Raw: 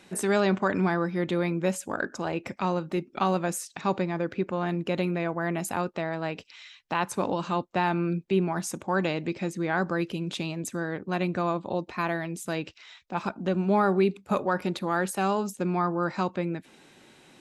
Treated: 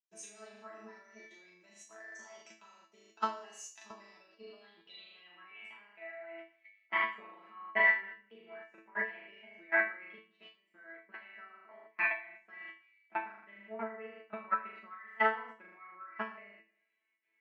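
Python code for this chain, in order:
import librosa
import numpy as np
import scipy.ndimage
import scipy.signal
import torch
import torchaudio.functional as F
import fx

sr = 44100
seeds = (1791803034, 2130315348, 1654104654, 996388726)

p1 = fx.pitch_ramps(x, sr, semitones=3.0, every_ms=1192)
p2 = fx.transient(p1, sr, attack_db=12, sustain_db=-2)
p3 = fx.weighting(p2, sr, curve='A')
p4 = p3 + fx.room_flutter(p3, sr, wall_m=6.7, rt60_s=0.71, dry=0)
p5 = fx.filter_sweep_lowpass(p4, sr, from_hz=6200.0, to_hz=2100.0, start_s=3.85, end_s=6.06, q=7.4)
p6 = fx.level_steps(p5, sr, step_db=16)
p7 = scipy.signal.sosfilt(scipy.signal.butter(2, 57.0, 'highpass', fs=sr, output='sos'), p6)
p8 = fx.peak_eq(p7, sr, hz=4300.0, db=-5.5, octaves=0.29)
p9 = fx.resonator_bank(p8, sr, root=57, chord='fifth', decay_s=0.4)
y = fx.band_widen(p9, sr, depth_pct=70)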